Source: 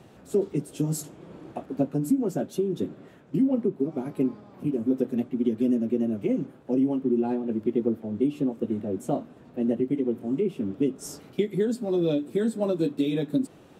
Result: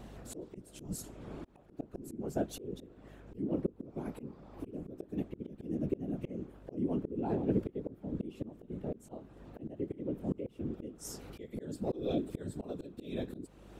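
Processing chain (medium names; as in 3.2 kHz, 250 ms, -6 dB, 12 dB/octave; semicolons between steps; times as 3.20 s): whisper effect; hum 50 Hz, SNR 26 dB; slow attack 518 ms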